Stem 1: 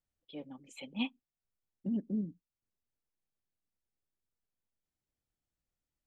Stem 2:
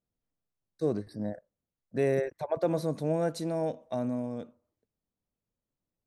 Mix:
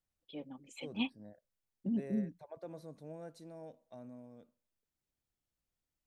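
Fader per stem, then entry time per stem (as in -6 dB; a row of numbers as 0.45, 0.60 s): -0.5, -19.0 dB; 0.00, 0.00 s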